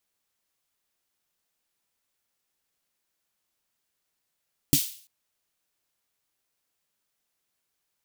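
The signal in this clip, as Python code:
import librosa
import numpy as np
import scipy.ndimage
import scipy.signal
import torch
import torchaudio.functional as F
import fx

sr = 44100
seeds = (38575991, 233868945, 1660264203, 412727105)

y = fx.drum_snare(sr, seeds[0], length_s=0.34, hz=150.0, second_hz=280.0, noise_db=-4.0, noise_from_hz=2800.0, decay_s=0.09, noise_decay_s=0.47)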